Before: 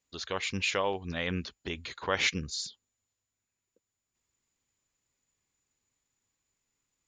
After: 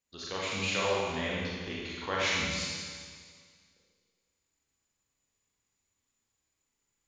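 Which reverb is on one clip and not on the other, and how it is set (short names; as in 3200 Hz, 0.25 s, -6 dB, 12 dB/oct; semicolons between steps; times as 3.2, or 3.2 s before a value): Schroeder reverb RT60 1.9 s, combs from 28 ms, DRR -5.5 dB; gain -6 dB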